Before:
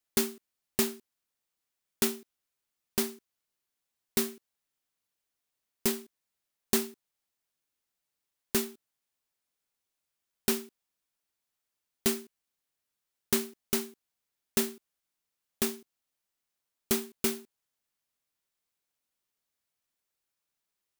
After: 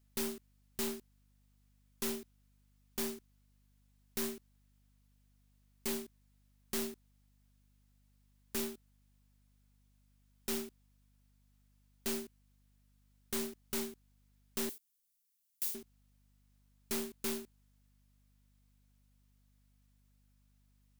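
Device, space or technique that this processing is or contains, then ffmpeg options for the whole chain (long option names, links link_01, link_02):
valve amplifier with mains hum: -filter_complex "[0:a]aeval=exprs='(tanh(79.4*val(0)+0.3)-tanh(0.3))/79.4':channel_layout=same,aeval=exprs='val(0)+0.000224*(sin(2*PI*50*n/s)+sin(2*PI*2*50*n/s)/2+sin(2*PI*3*50*n/s)/3+sin(2*PI*4*50*n/s)/4+sin(2*PI*5*50*n/s)/5)':channel_layout=same,asettb=1/sr,asplit=3[link_01][link_02][link_03];[link_01]atrim=end=14.694[link_04];[link_02]atrim=start=14.69:end=15.75,asetpts=PTS-STARTPTS,afade=type=in:duration=0.004:curve=qsin,afade=type=out:start_time=1.056:duration=0.004:curve=qsin,aderivative[link_05];[link_03]atrim=start=15.746[link_06];[link_04][link_05]acrossfade=duration=0.004:curve1=hsin:curve2=qsin[link_07];[link_07][link_06]acrossfade=duration=0.004:curve1=qsin:curve2=hsin,volume=4.5dB"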